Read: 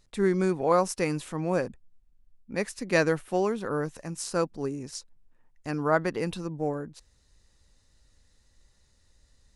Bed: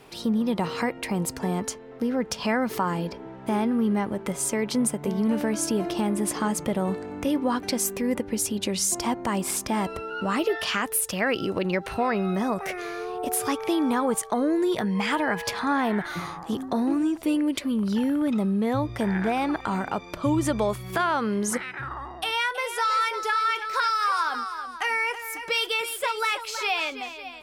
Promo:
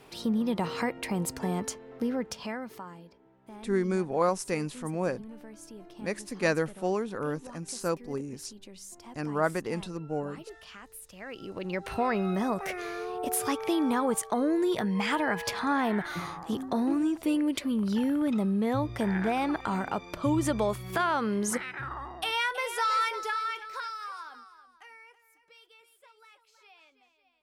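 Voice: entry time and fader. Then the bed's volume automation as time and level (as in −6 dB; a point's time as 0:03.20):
3.50 s, −3.0 dB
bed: 0:02.08 −3.5 dB
0:03.06 −21.5 dB
0:11.09 −21.5 dB
0:11.93 −3 dB
0:23.02 −3 dB
0:25.41 −31.5 dB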